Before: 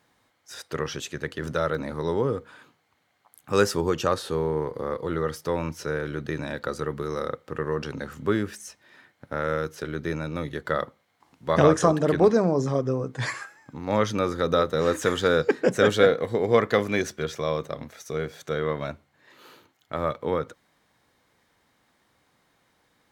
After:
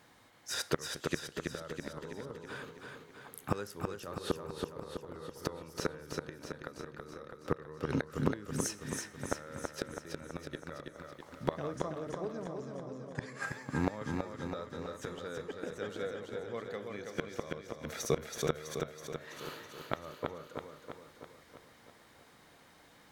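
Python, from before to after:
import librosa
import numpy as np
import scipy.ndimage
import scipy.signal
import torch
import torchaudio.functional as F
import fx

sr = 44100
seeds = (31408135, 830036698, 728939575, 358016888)

y = fx.rev_schroeder(x, sr, rt60_s=0.67, comb_ms=27, drr_db=18.0)
y = fx.gate_flip(y, sr, shuts_db=-21.0, range_db=-26)
y = fx.echo_feedback(y, sr, ms=327, feedback_pct=58, wet_db=-4.5)
y = F.gain(torch.from_numpy(y), 4.5).numpy()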